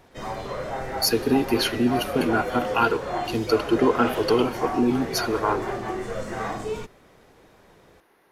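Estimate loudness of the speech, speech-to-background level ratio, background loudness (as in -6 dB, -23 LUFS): -23.5 LUFS, 7.5 dB, -31.0 LUFS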